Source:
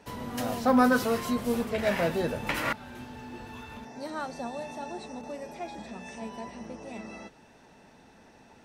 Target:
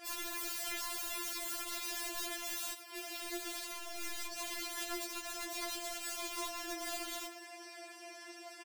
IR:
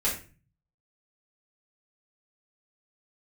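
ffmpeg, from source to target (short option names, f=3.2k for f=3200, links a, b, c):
-filter_complex "[0:a]highpass=f=1k:p=1,highshelf=f=9.6k:g=6.5,aecho=1:1:6.2:0.61,acompressor=threshold=-49dB:ratio=2.5,aeval=exprs='(mod(188*val(0)+1,2)-1)/188':c=same,asettb=1/sr,asplit=3[a][b][c];[a]atrim=end=3.724[d];[b]atrim=start=3.72:end=4.37,asetpts=PTS-STARTPTS,afade=t=in:d=0.004:c=qsin,afade=t=out:st=0.646:d=0.004:c=qsin,aeval=exprs='(tanh(178*val(0)+0.45)-tanh(0.45))/178':c=same[e];[c]atrim=start=4.366[f];[d][e]acrossfade=d=0.004:c1=hsin:c2=qsin[g];[g][f]acrossfade=d=0.004:c1=qsin:c2=hsin,asplit=2[h][i];[i]asplit=4[j][k][l][m];[j]adelay=90,afreqshift=42,volume=-14dB[n];[k]adelay=180,afreqshift=84,volume=-20.9dB[o];[l]adelay=270,afreqshift=126,volume=-27.9dB[p];[m]adelay=360,afreqshift=168,volume=-34.8dB[q];[n][o][p][q]amix=inputs=4:normalize=0[r];[h][r]amix=inputs=2:normalize=0,afftfilt=real='re*4*eq(mod(b,16),0)':imag='im*4*eq(mod(b,16),0)':win_size=2048:overlap=0.75,volume=12.5dB"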